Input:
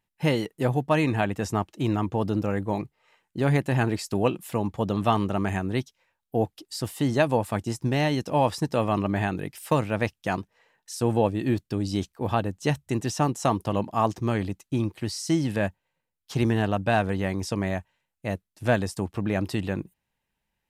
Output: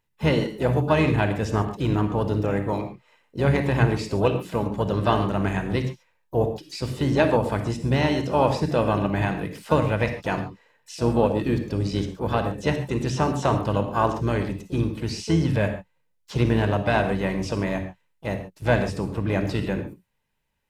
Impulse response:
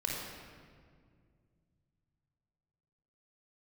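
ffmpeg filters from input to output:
-filter_complex "[0:a]asplit=3[s0][s1][s2];[s1]asetrate=22050,aresample=44100,atempo=2,volume=0.251[s3];[s2]asetrate=58866,aresample=44100,atempo=0.749154,volume=0.224[s4];[s0][s3][s4]amix=inputs=3:normalize=0,asplit=2[s5][s6];[1:a]atrim=start_sample=2205,atrim=end_sample=6615[s7];[s6][s7]afir=irnorm=-1:irlink=0,volume=0.631[s8];[s5][s8]amix=inputs=2:normalize=0,acrossover=split=6500[s9][s10];[s10]acompressor=threshold=0.00282:ratio=4:attack=1:release=60[s11];[s9][s11]amix=inputs=2:normalize=0,volume=0.75"

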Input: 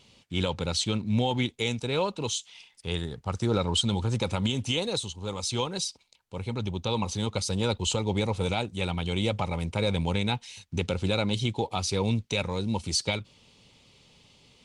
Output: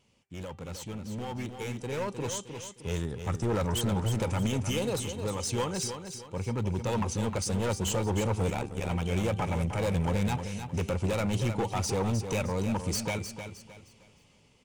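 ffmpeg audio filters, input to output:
-filter_complex "[0:a]volume=20,asoftclip=hard,volume=0.0501,equalizer=f=3900:t=o:w=0.58:g=-12,bandreject=f=391.3:t=h:w=4,bandreject=f=782.6:t=h:w=4,bandreject=f=1173.9:t=h:w=4,bandreject=f=1565.2:t=h:w=4,bandreject=f=1956.5:t=h:w=4,bandreject=f=2347.8:t=h:w=4,bandreject=f=2739.1:t=h:w=4,bandreject=f=3130.4:t=h:w=4,bandreject=f=3521.7:t=h:w=4,bandreject=f=3913:t=h:w=4,bandreject=f=4304.3:t=h:w=4,asplit=2[s0][s1];[s1]aecho=0:1:309|618|927|1236:0.376|0.132|0.046|0.0161[s2];[s0][s2]amix=inputs=2:normalize=0,asettb=1/sr,asplit=3[s3][s4][s5];[s3]atrim=end=8.504[s6];[s4]atrim=start=8.5:end=8.9,asetpts=PTS-STARTPTS,afade=t=in:d=0.004:c=qsin,afade=t=out:st=0.396:d=0.004:c=qsin,tremolo=f=71:d=0.788[s7];[s5]atrim=start=8.896[s8];[s6][s7]acrossfade=d=0.004:c1=hsin:c2=qsin[s9];[s9][s8]acrossfade=d=0.004:c1=qsin:c2=hsin,dynaudnorm=f=320:g=13:m=3.16,volume=0.376"

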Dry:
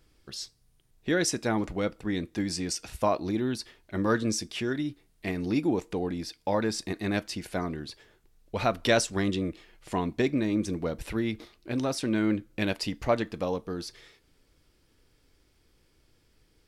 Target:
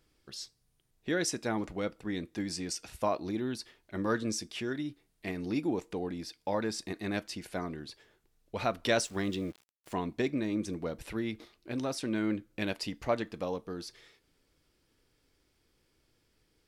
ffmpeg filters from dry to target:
-filter_complex "[0:a]asettb=1/sr,asplit=3[s0][s1][s2];[s0]atrim=end=8.994[s3];[s1]atrim=start=8.99:end=9.94,asetpts=PTS-STARTPTS,afade=t=in:d=0.004:c=qsin,afade=t=out:st=0.946:d=0.004:c=qsin,aeval=exprs='val(0)*gte(abs(val(0)),0.00531)':c=same[s4];[s2]atrim=start=9.936[s5];[s3][s4]acrossfade=d=0.004:c1=hsin:c2=qsin[s6];[s6][s5]acrossfade=d=0.004:c1=qsin:c2=hsin,lowshelf=f=90:g=-6.5,volume=0.596"

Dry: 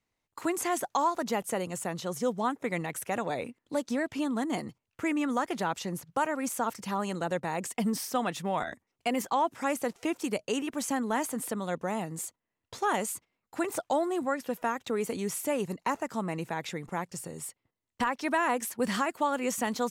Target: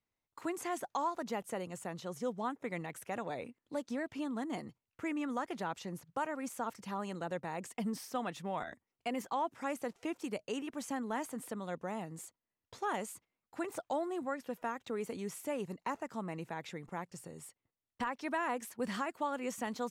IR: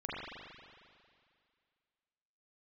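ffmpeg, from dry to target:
-af "highshelf=f=5400:g=-6,volume=0.422"

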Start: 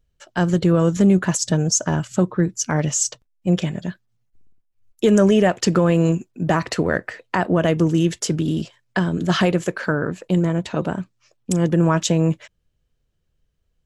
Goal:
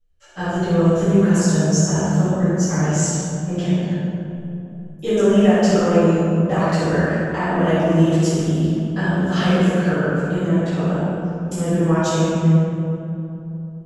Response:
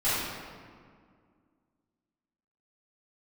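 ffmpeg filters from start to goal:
-filter_complex "[1:a]atrim=start_sample=2205,asetrate=26901,aresample=44100[s0];[0:a][s0]afir=irnorm=-1:irlink=0,volume=0.168"

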